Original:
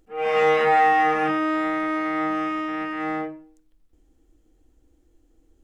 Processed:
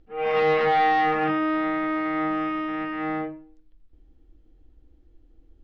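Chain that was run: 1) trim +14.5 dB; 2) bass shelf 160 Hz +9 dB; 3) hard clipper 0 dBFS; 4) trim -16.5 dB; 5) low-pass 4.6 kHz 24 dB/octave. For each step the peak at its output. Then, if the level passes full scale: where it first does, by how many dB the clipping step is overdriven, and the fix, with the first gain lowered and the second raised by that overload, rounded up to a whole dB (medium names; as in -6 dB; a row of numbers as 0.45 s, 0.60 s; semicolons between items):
+5.5 dBFS, +6.0 dBFS, 0.0 dBFS, -16.5 dBFS, -16.0 dBFS; step 1, 6.0 dB; step 1 +8.5 dB, step 4 -10.5 dB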